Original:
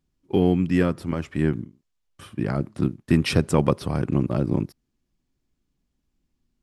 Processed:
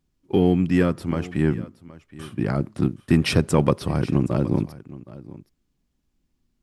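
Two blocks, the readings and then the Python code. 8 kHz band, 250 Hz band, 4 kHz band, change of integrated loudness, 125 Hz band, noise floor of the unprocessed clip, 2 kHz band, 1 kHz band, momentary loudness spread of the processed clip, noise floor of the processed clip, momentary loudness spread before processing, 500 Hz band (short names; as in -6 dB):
+2.0 dB, +1.5 dB, +2.0 dB, +1.5 dB, +1.5 dB, -76 dBFS, +1.5 dB, +1.0 dB, 21 LU, -73 dBFS, 10 LU, +1.0 dB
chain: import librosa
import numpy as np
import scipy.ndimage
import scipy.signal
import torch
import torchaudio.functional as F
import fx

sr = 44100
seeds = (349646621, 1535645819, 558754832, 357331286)

p1 = 10.0 ** (-17.5 / 20.0) * np.tanh(x / 10.0 ** (-17.5 / 20.0))
p2 = x + (p1 * librosa.db_to_amplitude(-11.5))
y = p2 + 10.0 ** (-18.5 / 20.0) * np.pad(p2, (int(770 * sr / 1000.0), 0))[:len(p2)]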